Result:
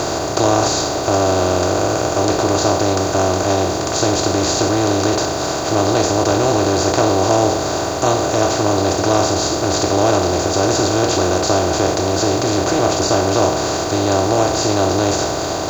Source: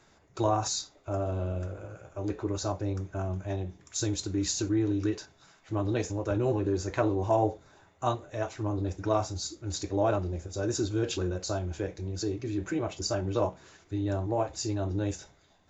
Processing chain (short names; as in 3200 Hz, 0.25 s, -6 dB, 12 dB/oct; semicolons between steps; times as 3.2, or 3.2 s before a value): per-bin compression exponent 0.2; in parallel at -9 dB: requantised 6-bit, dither none; on the sum: gain +2.5 dB